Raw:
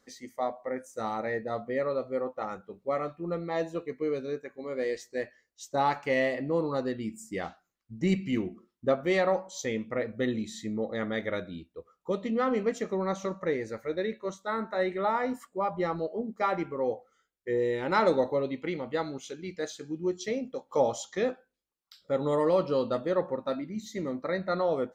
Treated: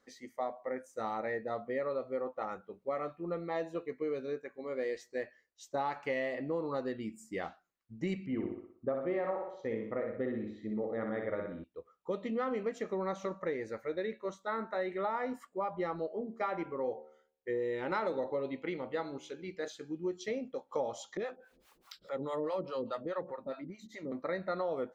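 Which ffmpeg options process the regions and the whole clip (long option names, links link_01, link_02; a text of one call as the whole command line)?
ffmpeg -i in.wav -filter_complex "[0:a]asettb=1/sr,asplit=3[link_01][link_02][link_03];[link_01]atrim=end=8.264[link_04];[link_02]atrim=start=8.26:end=11.64,asetpts=PTS-STARTPTS,afade=type=in:duration=0.004:curve=qsin,afade=type=out:start_time=3.376:duration=0.004:curve=qsin,lowpass=1400,aecho=1:1:61|122|183|244|305|366:0.596|0.274|0.126|0.058|0.0267|0.0123,atrim=end_sample=149058[link_05];[link_03]atrim=start=11.636[link_06];[link_04][link_05]acrossfade=duration=0.004:curve1=hsin:curve2=qsin[link_07];[link_07][link_06]acrossfade=duration=0.004:curve1=qsin:curve2=hsin,asettb=1/sr,asplit=3[link_08][link_09][link_10];[link_08]atrim=end=16.074[link_11];[link_09]atrim=start=16.07:end=19.68,asetpts=PTS-STARTPTS,afade=type=in:duration=0.004:curve=qsin,afade=type=out:start_time=3.606:duration=0.004:curve=qsin,highshelf=frequency=7600:gain=-4,bandreject=frequency=76.22:width_type=h:width=4,bandreject=frequency=152.44:width_type=h:width=4,bandreject=frequency=228.66:width_type=h:width=4,bandreject=frequency=304.88:width_type=h:width=4,bandreject=frequency=381.1:width_type=h:width=4,bandreject=frequency=457.32:width_type=h:width=4,bandreject=frequency=533.54:width_type=h:width=4,bandreject=frequency=609.76:width_type=h:width=4,bandreject=frequency=685.98:width_type=h:width=4,bandreject=frequency=762.2:width_type=h:width=4,bandreject=frequency=838.42:width_type=h:width=4,bandreject=frequency=914.64:width_type=h:width=4,bandreject=frequency=990.86:width_type=h:width=4[link_12];[link_10]atrim=start=19.676[link_13];[link_11][link_12]acrossfade=duration=0.004:curve1=hsin:curve2=qsin[link_14];[link_14][link_13]acrossfade=duration=0.004:curve1=qsin:curve2=hsin,asettb=1/sr,asplit=3[link_15][link_16][link_17];[link_15]atrim=end=21.174[link_18];[link_16]atrim=start=21.17:end=24.12,asetpts=PTS-STARTPTS,afade=type=in:duration=0.004:curve=qsin,afade=type=out:start_time=2.946:duration=0.004:curve=qsin,acompressor=mode=upward:threshold=-28dB:ratio=2.5:attack=3.2:release=140:knee=2.83:detection=peak,acrossover=split=580[link_19][link_20];[link_19]aeval=exprs='val(0)*(1-1/2+1/2*cos(2*PI*4.8*n/s))':channel_layout=same[link_21];[link_20]aeval=exprs='val(0)*(1-1/2-1/2*cos(2*PI*4.8*n/s))':channel_layout=same[link_22];[link_21][link_22]amix=inputs=2:normalize=0[link_23];[link_17]atrim=start=24.116[link_24];[link_18][link_23]acrossfade=duration=0.004:curve1=hsin:curve2=qsin[link_25];[link_25][link_24]acrossfade=duration=0.004:curve1=qsin:curve2=hsin,bass=frequency=250:gain=-5,treble=frequency=4000:gain=-7,acompressor=threshold=-28dB:ratio=5,volume=-2.5dB" out.wav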